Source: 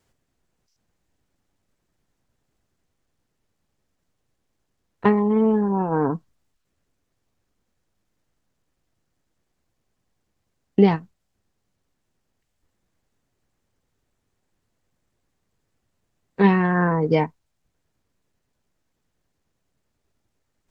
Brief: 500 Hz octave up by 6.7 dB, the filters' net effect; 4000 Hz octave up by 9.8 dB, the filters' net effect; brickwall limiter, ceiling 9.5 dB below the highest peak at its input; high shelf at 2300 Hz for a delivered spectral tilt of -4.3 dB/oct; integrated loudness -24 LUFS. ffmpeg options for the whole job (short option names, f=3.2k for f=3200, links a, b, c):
-af "equalizer=f=500:t=o:g=8,highshelf=f=2.3k:g=6,equalizer=f=4k:t=o:g=8,volume=-4dB,alimiter=limit=-12.5dB:level=0:latency=1"